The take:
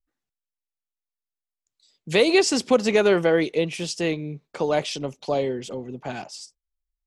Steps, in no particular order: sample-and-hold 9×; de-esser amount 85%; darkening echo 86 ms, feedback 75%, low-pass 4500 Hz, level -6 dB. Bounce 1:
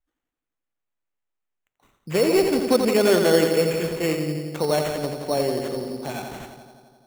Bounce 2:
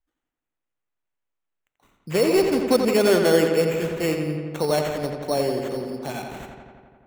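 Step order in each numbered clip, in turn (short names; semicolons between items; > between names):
de-esser > darkening echo > sample-and-hold; de-esser > sample-and-hold > darkening echo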